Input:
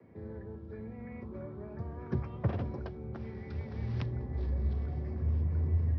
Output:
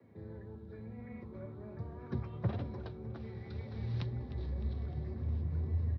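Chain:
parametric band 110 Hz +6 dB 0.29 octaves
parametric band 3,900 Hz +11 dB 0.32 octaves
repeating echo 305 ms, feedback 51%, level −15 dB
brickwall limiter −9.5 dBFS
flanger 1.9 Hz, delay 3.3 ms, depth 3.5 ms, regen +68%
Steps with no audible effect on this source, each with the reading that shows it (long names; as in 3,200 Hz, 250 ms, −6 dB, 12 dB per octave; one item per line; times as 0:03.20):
brickwall limiter −9.5 dBFS: peak of its input −16.5 dBFS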